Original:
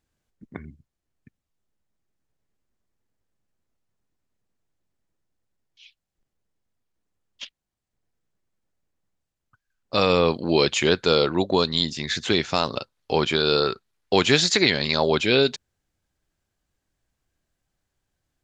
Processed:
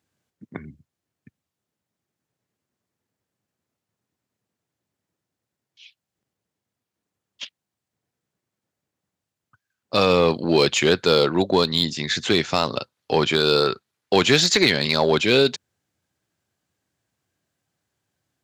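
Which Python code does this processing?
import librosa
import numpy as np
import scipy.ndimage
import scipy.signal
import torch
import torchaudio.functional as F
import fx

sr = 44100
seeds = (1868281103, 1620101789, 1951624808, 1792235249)

p1 = scipy.signal.sosfilt(scipy.signal.butter(4, 91.0, 'highpass', fs=sr, output='sos'), x)
p2 = np.clip(10.0 ** (15.5 / 20.0) * p1, -1.0, 1.0) / 10.0 ** (15.5 / 20.0)
p3 = p1 + (p2 * librosa.db_to_amplitude(-4.0))
y = p3 * librosa.db_to_amplitude(-1.5)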